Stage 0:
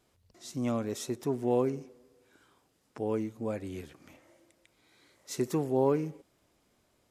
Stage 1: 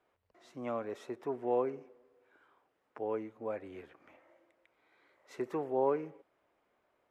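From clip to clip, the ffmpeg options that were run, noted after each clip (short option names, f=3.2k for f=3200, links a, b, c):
-filter_complex "[0:a]acrossover=split=390 2500:gain=0.158 1 0.0708[a][b][c];[a][b][c]amix=inputs=3:normalize=0"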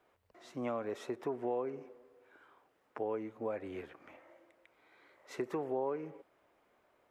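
-af "acompressor=threshold=-38dB:ratio=4,volume=4.5dB"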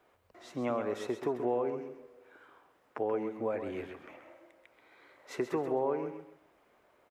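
-af "aecho=1:1:132|264|396:0.376|0.094|0.0235,volume=4dB"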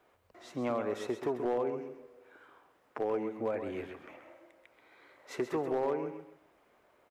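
-af "asoftclip=type=hard:threshold=-25dB"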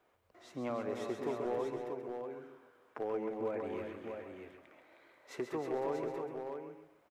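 -af "aecho=1:1:141|312|636:0.299|0.447|0.501,volume=-5dB"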